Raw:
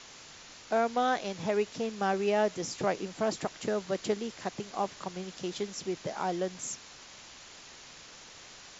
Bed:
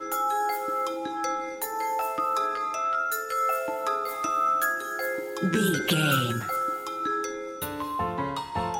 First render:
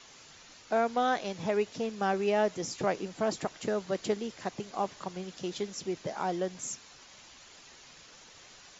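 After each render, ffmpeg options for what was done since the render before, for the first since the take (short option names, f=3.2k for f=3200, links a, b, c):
-af "afftdn=nr=6:nf=-51"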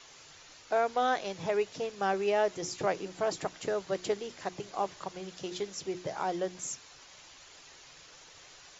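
-af "equalizer=f=220:w=6.3:g=-14,bandreject=f=60:t=h:w=6,bandreject=f=120:t=h:w=6,bandreject=f=180:t=h:w=6,bandreject=f=240:t=h:w=6,bandreject=f=300:t=h:w=6,bandreject=f=360:t=h:w=6"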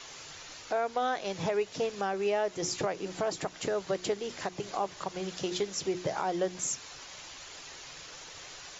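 -filter_complex "[0:a]asplit=2[a][b];[b]acompressor=threshold=-38dB:ratio=6,volume=2dB[c];[a][c]amix=inputs=2:normalize=0,alimiter=limit=-20dB:level=0:latency=1:release=224"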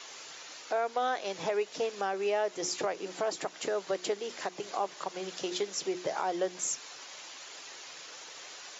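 -af "highpass=300"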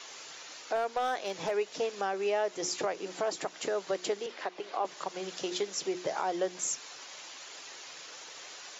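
-filter_complex "[0:a]asettb=1/sr,asplit=3[a][b][c];[a]atrim=end=0.754[d];[b]atrim=start=0.75:end=1.55,asetpts=PTS-STARTPTS,afade=t=in:d=0.004:c=qsin,afade=t=out:st=0.796:d=0.004:c=qsin,asoftclip=type=hard:threshold=-24.5dB[e];[c]atrim=start=1.546[f];[d][e]acrossfade=d=0.004:c1=hsin:c2=qsin[g];[g][f]acrossfade=d=0.004:c1=qsin:c2=hsin,asettb=1/sr,asplit=3[h][i][j];[h]atrim=end=4.264[k];[i]atrim=start=4.26:end=4.85,asetpts=PTS-STARTPTS,afade=t=in:d=0.004:c=qsin,afade=t=out:st=0.586:d=0.004:c=qsin,acrossover=split=240 4600:gain=0.126 1 0.112[l][m][n];[l][m][n]amix=inputs=3:normalize=0[o];[j]atrim=start=4.846[p];[k][o]acrossfade=d=0.004:c1=hsin:c2=qsin[q];[q][p]acrossfade=d=0.004:c1=qsin:c2=hsin"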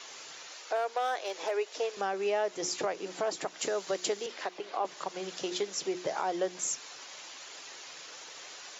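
-filter_complex "[0:a]asettb=1/sr,asplit=3[a][b][c];[a]atrim=end=0.474[d];[b]atrim=start=0.47:end=1.97,asetpts=PTS-STARTPTS,afade=t=in:d=0.004:c=qsin,afade=t=out:st=1.496:d=0.004:c=qsin,highpass=f=350:w=0.5412,highpass=f=350:w=1.3066[e];[c]atrim=start=1.966[f];[d][e]acrossfade=d=0.004:c1=hsin:c2=qsin[g];[g][f]acrossfade=d=0.004:c1=qsin:c2=hsin,asettb=1/sr,asplit=3[h][i][j];[h]atrim=end=3.594[k];[i]atrim=start=3.59:end=4.58,asetpts=PTS-STARTPTS,afade=t=in:d=0.004:c=qsin,afade=t=out:st=0.986:d=0.004:c=qsin,aemphasis=mode=production:type=cd[l];[j]atrim=start=4.576[m];[k][l]acrossfade=d=0.004:c1=hsin:c2=qsin[n];[n][m]acrossfade=d=0.004:c1=qsin:c2=hsin"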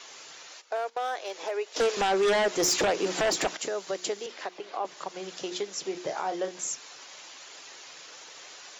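-filter_complex "[0:a]asplit=3[a][b][c];[a]afade=t=out:st=0.6:d=0.02[d];[b]agate=range=-13dB:threshold=-39dB:ratio=16:release=100:detection=peak,afade=t=in:st=0.6:d=0.02,afade=t=out:st=1.14:d=0.02[e];[c]afade=t=in:st=1.14:d=0.02[f];[d][e][f]amix=inputs=3:normalize=0,asettb=1/sr,asplit=3[g][h][i];[g]atrim=end=1.764[j];[h]atrim=start=1.76:end=3.57,asetpts=PTS-STARTPTS,afade=t=in:d=0.004:c=qsin,afade=t=out:st=1.806:d=0.004:c=qsin,aeval=exprs='0.1*sin(PI/2*2.51*val(0)/0.1)':c=same[k];[i]atrim=start=3.566[l];[j][k]acrossfade=d=0.004:c1=hsin:c2=qsin[m];[m][l]acrossfade=d=0.004:c1=qsin:c2=hsin,asettb=1/sr,asplit=3[n][o][p];[n]atrim=end=5.834[q];[o]atrim=start=5.83:end=6.62,asetpts=PTS-STARTPTS,afade=t=in:d=0.004:c=qsin,afade=t=out:st=0.786:d=0.004:c=qsin,asplit=2[r][s];[s]adelay=31,volume=-7.5dB[t];[r][t]amix=inputs=2:normalize=0,atrim=end_sample=34839[u];[p]atrim=start=6.616[v];[q][u]acrossfade=d=0.004:c1=hsin:c2=qsin[w];[w][v]acrossfade=d=0.004:c1=qsin:c2=hsin"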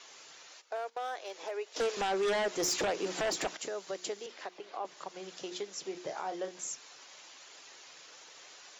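-af "volume=-6.5dB"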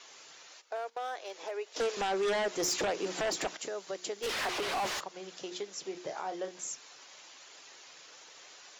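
-filter_complex "[0:a]asplit=3[a][b][c];[a]afade=t=out:st=4.22:d=0.02[d];[b]asplit=2[e][f];[f]highpass=f=720:p=1,volume=39dB,asoftclip=type=tanh:threshold=-26dB[g];[e][g]amix=inputs=2:normalize=0,lowpass=f=4.4k:p=1,volume=-6dB,afade=t=in:st=4.22:d=0.02,afade=t=out:st=4.99:d=0.02[h];[c]afade=t=in:st=4.99:d=0.02[i];[d][h][i]amix=inputs=3:normalize=0"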